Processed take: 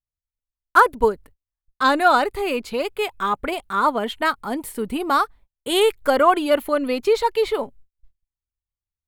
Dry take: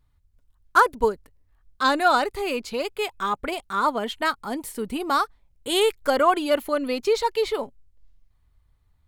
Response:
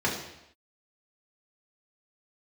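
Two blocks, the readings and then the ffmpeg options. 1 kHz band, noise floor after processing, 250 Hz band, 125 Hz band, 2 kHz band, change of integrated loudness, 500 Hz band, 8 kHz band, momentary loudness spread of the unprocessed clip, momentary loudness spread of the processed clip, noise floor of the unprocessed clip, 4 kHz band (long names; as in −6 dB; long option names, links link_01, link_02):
+3.5 dB, below −85 dBFS, +3.5 dB, can't be measured, +3.0 dB, +3.0 dB, +3.5 dB, +0.5 dB, 11 LU, 11 LU, −65 dBFS, +1.0 dB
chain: -af "agate=range=-33dB:threshold=-47dB:ratio=16:detection=peak,equalizer=frequency=5800:width=1.2:gain=-6.5,volume=3.5dB"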